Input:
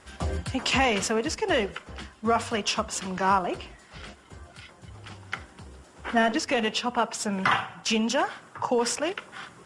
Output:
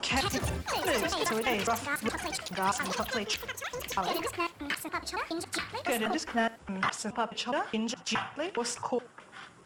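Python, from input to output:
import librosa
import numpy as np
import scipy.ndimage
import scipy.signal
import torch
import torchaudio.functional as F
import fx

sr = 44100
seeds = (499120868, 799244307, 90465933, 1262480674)

y = fx.block_reorder(x, sr, ms=209.0, group=4)
y = y + 10.0 ** (-21.0 / 20.0) * np.pad(y, (int(80 * sr / 1000.0), 0))[:len(y)]
y = fx.echo_pitch(y, sr, ms=144, semitones=7, count=3, db_per_echo=-3.0)
y = y * librosa.db_to_amplitude(-6.0)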